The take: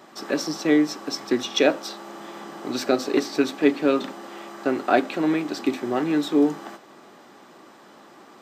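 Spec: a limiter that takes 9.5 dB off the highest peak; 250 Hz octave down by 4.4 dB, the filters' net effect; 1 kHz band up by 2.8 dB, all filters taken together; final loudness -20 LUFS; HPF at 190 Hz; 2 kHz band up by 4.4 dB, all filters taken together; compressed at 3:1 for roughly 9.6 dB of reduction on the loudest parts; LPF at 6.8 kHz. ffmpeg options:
-af "highpass=190,lowpass=6800,equalizer=f=250:t=o:g=-5,equalizer=f=1000:t=o:g=3.5,equalizer=f=2000:t=o:g=4.5,acompressor=threshold=0.0562:ratio=3,volume=4.22,alimiter=limit=0.355:level=0:latency=1"

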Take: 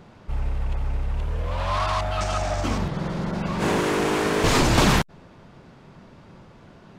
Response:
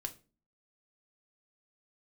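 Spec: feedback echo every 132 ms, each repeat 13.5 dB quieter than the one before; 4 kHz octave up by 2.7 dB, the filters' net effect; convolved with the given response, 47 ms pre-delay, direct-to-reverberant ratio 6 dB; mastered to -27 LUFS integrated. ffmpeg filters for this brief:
-filter_complex "[0:a]equalizer=f=4000:t=o:g=3.5,aecho=1:1:132|264:0.211|0.0444,asplit=2[s0][s1];[1:a]atrim=start_sample=2205,adelay=47[s2];[s1][s2]afir=irnorm=-1:irlink=0,volume=0.596[s3];[s0][s3]amix=inputs=2:normalize=0,volume=0.596"

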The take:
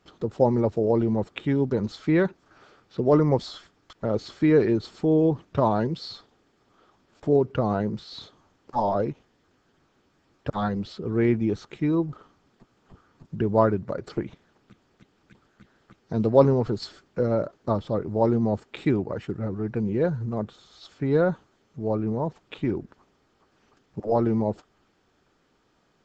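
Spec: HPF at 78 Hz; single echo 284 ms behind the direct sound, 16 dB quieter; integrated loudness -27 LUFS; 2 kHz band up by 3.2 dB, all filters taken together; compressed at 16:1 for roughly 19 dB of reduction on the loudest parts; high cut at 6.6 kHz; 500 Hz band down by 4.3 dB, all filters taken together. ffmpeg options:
-af "highpass=78,lowpass=6600,equalizer=f=500:t=o:g=-5.5,equalizer=f=2000:t=o:g=4.5,acompressor=threshold=0.0224:ratio=16,aecho=1:1:284:0.158,volume=4.22"

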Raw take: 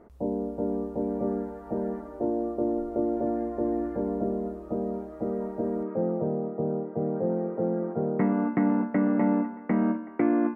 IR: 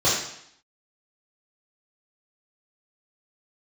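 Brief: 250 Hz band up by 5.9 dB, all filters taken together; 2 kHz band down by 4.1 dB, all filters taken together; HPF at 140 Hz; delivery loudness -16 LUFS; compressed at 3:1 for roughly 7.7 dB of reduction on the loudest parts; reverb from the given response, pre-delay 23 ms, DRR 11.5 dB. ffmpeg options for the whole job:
-filter_complex "[0:a]highpass=140,equalizer=f=250:t=o:g=8,equalizer=f=2000:t=o:g=-5.5,acompressor=threshold=0.0562:ratio=3,asplit=2[s0][s1];[1:a]atrim=start_sample=2205,adelay=23[s2];[s1][s2]afir=irnorm=-1:irlink=0,volume=0.0376[s3];[s0][s3]amix=inputs=2:normalize=0,volume=3.98"

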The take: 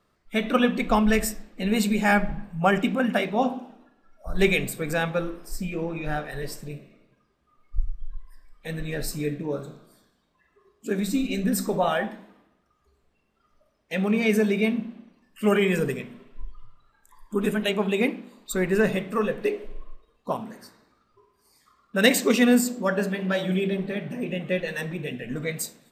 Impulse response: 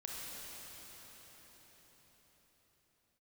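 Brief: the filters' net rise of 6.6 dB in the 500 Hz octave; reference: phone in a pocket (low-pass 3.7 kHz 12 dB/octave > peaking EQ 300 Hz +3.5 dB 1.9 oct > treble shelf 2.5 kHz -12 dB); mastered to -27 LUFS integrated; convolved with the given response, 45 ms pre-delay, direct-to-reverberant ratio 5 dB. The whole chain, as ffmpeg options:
-filter_complex "[0:a]equalizer=f=500:t=o:g=5.5,asplit=2[s0][s1];[1:a]atrim=start_sample=2205,adelay=45[s2];[s1][s2]afir=irnorm=-1:irlink=0,volume=0.562[s3];[s0][s3]amix=inputs=2:normalize=0,lowpass=3700,equalizer=f=300:t=o:w=1.9:g=3.5,highshelf=f=2500:g=-12,volume=0.501"

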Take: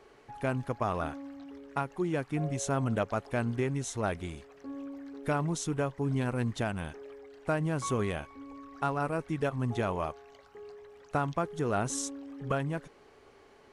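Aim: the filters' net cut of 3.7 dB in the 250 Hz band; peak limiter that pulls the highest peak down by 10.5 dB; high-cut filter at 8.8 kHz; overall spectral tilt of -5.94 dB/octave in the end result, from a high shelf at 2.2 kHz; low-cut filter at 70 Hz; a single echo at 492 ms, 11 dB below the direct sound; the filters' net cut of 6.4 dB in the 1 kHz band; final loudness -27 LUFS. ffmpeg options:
-af "highpass=70,lowpass=8800,equalizer=f=250:t=o:g=-4.5,equalizer=f=1000:t=o:g=-7.5,highshelf=f=2200:g=-6.5,alimiter=level_in=2.66:limit=0.0631:level=0:latency=1,volume=0.376,aecho=1:1:492:0.282,volume=5.96"

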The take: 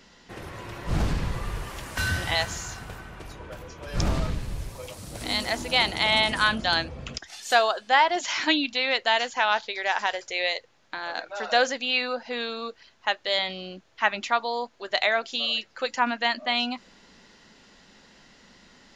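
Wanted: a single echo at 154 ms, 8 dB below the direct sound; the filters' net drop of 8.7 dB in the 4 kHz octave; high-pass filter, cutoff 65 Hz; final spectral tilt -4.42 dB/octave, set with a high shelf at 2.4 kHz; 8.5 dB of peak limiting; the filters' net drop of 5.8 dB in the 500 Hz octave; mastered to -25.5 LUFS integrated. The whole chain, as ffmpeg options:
-af "highpass=65,equalizer=f=500:t=o:g=-7.5,highshelf=f=2400:g=-5.5,equalizer=f=4000:t=o:g=-6.5,alimiter=limit=0.126:level=0:latency=1,aecho=1:1:154:0.398,volume=2.11"

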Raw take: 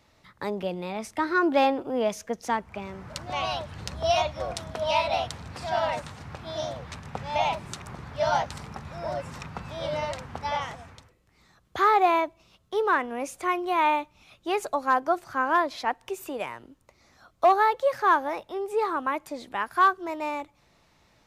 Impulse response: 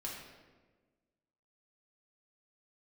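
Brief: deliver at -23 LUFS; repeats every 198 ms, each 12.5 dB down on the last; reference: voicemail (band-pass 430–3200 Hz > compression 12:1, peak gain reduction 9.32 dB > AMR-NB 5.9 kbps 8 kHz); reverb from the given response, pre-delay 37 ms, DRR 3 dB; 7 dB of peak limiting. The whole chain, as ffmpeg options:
-filter_complex "[0:a]alimiter=limit=0.133:level=0:latency=1,aecho=1:1:198|396|594:0.237|0.0569|0.0137,asplit=2[s0][s1];[1:a]atrim=start_sample=2205,adelay=37[s2];[s1][s2]afir=irnorm=-1:irlink=0,volume=0.708[s3];[s0][s3]amix=inputs=2:normalize=0,highpass=430,lowpass=3200,acompressor=threshold=0.0398:ratio=12,volume=4.47" -ar 8000 -c:a libopencore_amrnb -b:a 5900

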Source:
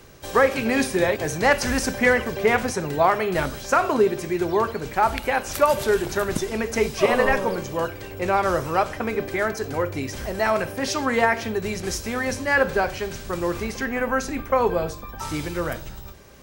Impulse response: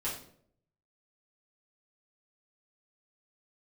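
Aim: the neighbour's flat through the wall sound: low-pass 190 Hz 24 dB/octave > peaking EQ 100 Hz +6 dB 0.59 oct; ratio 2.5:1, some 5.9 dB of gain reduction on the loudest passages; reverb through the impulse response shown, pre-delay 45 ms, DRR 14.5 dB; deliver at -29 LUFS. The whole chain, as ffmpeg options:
-filter_complex "[0:a]acompressor=threshold=0.0794:ratio=2.5,asplit=2[s0][s1];[1:a]atrim=start_sample=2205,adelay=45[s2];[s1][s2]afir=irnorm=-1:irlink=0,volume=0.126[s3];[s0][s3]amix=inputs=2:normalize=0,lowpass=f=190:w=0.5412,lowpass=f=190:w=1.3066,equalizer=f=100:t=o:w=0.59:g=6,volume=2.37"

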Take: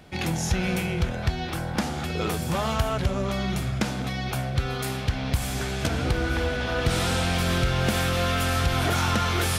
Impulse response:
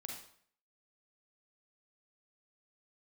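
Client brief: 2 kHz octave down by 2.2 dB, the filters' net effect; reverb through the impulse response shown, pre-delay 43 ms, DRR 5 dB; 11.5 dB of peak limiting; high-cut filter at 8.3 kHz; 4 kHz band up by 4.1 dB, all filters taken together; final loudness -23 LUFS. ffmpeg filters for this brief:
-filter_complex "[0:a]lowpass=8300,equalizer=f=2000:t=o:g=-5,equalizer=f=4000:t=o:g=7,alimiter=limit=0.0708:level=0:latency=1,asplit=2[s0][s1];[1:a]atrim=start_sample=2205,adelay=43[s2];[s1][s2]afir=irnorm=-1:irlink=0,volume=0.75[s3];[s0][s3]amix=inputs=2:normalize=0,volume=2.37"

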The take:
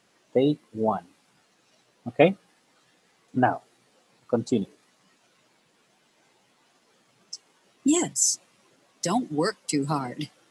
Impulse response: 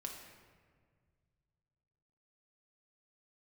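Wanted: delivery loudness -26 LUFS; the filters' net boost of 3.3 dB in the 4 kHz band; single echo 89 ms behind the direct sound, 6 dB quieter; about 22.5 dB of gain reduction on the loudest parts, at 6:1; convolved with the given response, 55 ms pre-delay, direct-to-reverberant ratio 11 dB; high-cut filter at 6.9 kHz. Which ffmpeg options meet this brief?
-filter_complex "[0:a]lowpass=6900,equalizer=f=4000:t=o:g=5.5,acompressor=threshold=0.0141:ratio=6,aecho=1:1:89:0.501,asplit=2[s0][s1];[1:a]atrim=start_sample=2205,adelay=55[s2];[s1][s2]afir=irnorm=-1:irlink=0,volume=0.355[s3];[s0][s3]amix=inputs=2:normalize=0,volume=5.31"

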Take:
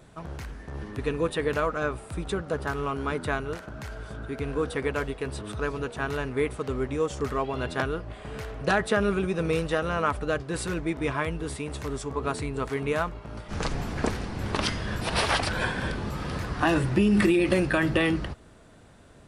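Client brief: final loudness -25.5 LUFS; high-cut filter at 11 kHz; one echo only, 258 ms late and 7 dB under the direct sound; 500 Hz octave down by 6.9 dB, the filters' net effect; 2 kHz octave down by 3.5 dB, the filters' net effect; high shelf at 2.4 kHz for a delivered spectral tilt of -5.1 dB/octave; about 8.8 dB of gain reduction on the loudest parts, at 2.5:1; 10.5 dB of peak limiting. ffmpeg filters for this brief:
-af "lowpass=11000,equalizer=f=500:t=o:g=-9,equalizer=f=2000:t=o:g=-5.5,highshelf=f=2400:g=3,acompressor=threshold=0.0224:ratio=2.5,alimiter=level_in=1.5:limit=0.0631:level=0:latency=1,volume=0.668,aecho=1:1:258:0.447,volume=3.76"

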